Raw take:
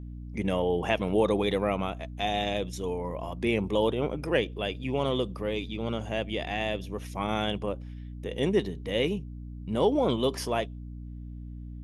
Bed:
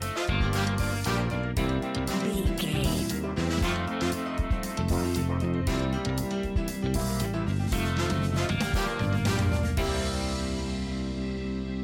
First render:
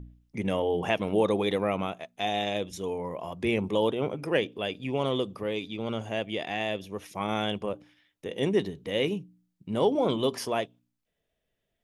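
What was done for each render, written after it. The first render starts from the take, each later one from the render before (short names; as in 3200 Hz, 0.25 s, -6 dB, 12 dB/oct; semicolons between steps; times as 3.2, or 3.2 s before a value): de-hum 60 Hz, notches 5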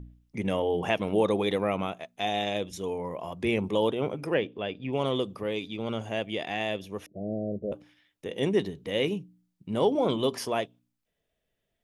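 4.34–4.93 air absorption 220 m; 7.06–7.72 steep low-pass 670 Hz 96 dB/oct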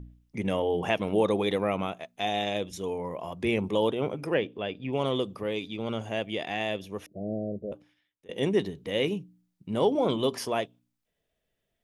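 7.36–8.29 fade out, to -21.5 dB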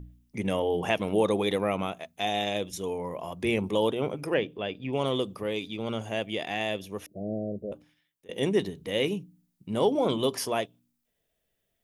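high shelf 8000 Hz +9.5 dB; de-hum 80.12 Hz, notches 3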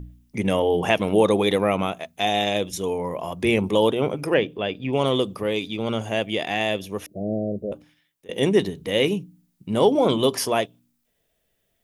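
gain +6.5 dB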